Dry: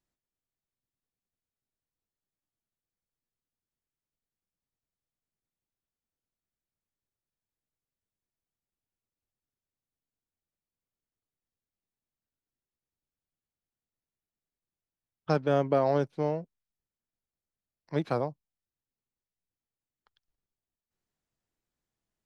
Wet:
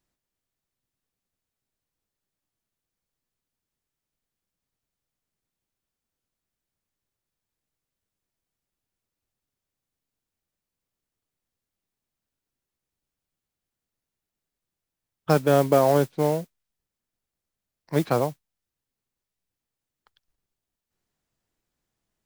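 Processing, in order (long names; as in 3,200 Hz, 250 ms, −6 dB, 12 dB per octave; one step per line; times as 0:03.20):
noise that follows the level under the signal 20 dB
level +6.5 dB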